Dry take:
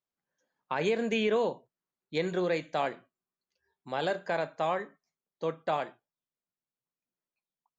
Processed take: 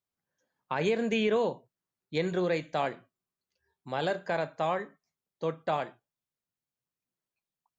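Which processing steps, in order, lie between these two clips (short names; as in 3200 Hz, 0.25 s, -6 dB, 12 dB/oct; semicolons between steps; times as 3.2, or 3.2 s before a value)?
bell 91 Hz +9 dB 1.3 oct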